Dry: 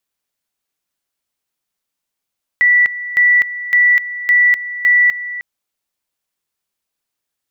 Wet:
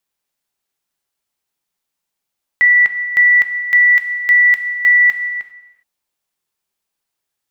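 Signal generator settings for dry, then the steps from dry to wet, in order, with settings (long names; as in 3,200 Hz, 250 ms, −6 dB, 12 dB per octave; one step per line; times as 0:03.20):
tone at two levels in turn 1,960 Hz −7.5 dBFS, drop 14.5 dB, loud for 0.25 s, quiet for 0.31 s, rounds 5
parametric band 850 Hz +3.5 dB 0.28 octaves
reverb whose tail is shaped and stops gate 430 ms falling, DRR 7.5 dB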